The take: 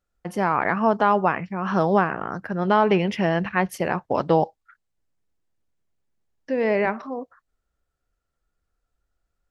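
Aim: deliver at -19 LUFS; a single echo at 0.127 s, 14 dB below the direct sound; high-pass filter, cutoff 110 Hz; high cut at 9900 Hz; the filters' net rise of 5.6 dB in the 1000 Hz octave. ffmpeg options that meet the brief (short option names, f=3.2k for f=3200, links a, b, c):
-af "highpass=110,lowpass=9.9k,equalizer=f=1k:t=o:g=7,aecho=1:1:127:0.2,volume=0.5dB"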